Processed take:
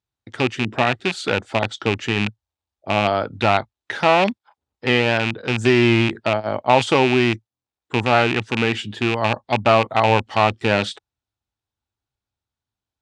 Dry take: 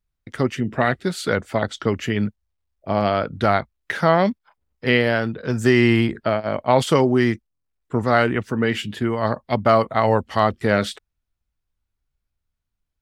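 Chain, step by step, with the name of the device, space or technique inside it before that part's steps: car door speaker with a rattle (rattle on loud lows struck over -23 dBFS, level -9 dBFS; cabinet simulation 100–8500 Hz, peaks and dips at 110 Hz +5 dB, 160 Hz -7 dB, 340 Hz +3 dB, 830 Hz +7 dB, 2.1 kHz -3 dB, 3.7 kHz +4 dB); trim -1 dB

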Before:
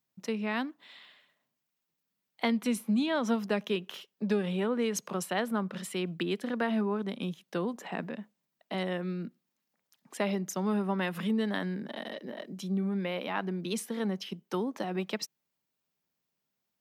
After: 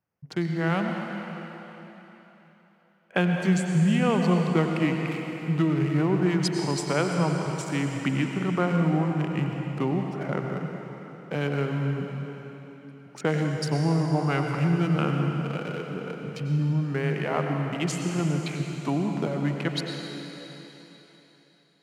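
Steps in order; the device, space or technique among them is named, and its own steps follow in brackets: local Wiener filter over 9 samples; slowed and reverbed (tape speed -23%; reverberation RT60 3.7 s, pre-delay 87 ms, DRR 2 dB); trim +5 dB

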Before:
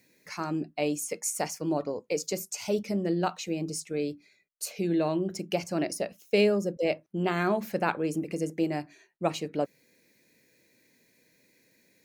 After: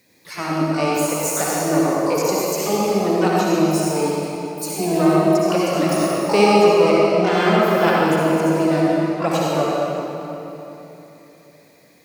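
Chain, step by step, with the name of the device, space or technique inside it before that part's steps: shimmer-style reverb (harmony voices +12 st -7 dB; reverberation RT60 3.3 s, pre-delay 53 ms, DRR -5 dB); trim +4.5 dB

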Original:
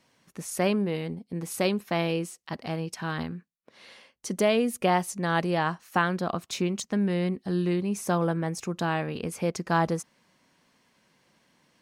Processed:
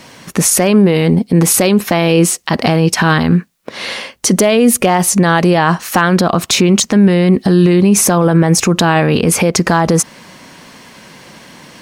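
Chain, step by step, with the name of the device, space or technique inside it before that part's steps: loud club master (compression 2:1, threshold -29 dBFS, peak gain reduction 6.5 dB; hard clipper -19 dBFS, distortion -29 dB; loudness maximiser +29 dB); trim -1 dB

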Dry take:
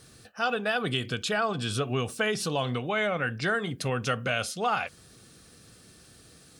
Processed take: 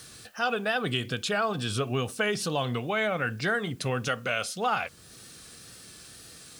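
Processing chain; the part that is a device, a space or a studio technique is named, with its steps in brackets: noise-reduction cassette on a plain deck (tape noise reduction on one side only encoder only; wow and flutter; white noise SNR 33 dB); 4.08–4.55 s: bass shelf 210 Hz -9 dB

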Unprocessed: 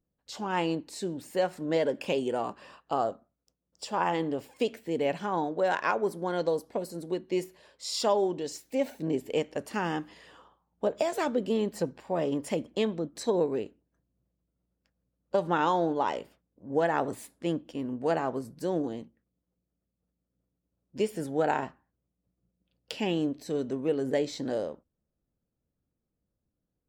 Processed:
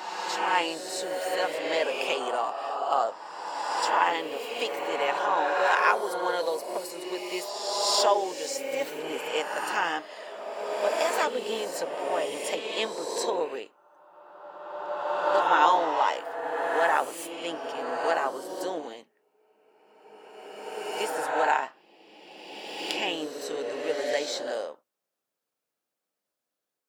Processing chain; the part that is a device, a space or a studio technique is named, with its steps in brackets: ghost voice (reverse; reverberation RT60 2.6 s, pre-delay 6 ms, DRR 0.5 dB; reverse; high-pass 790 Hz 12 dB/octave); trim +6 dB

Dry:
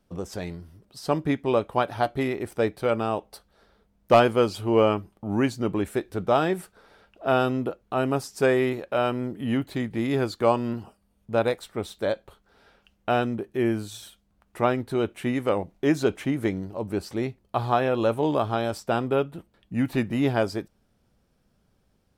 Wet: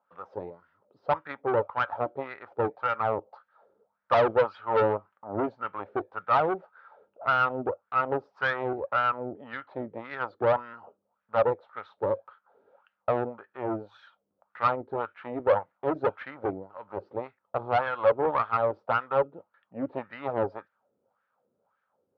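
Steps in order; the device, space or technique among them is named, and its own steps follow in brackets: wah-wah guitar rig (wah-wah 1.8 Hz 350–1700 Hz, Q 3.9; valve stage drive 29 dB, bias 0.7; cabinet simulation 95–4400 Hz, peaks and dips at 100 Hz +6 dB, 350 Hz -5 dB, 540 Hz +8 dB, 900 Hz +7 dB, 1.3 kHz +9 dB); trim +6.5 dB

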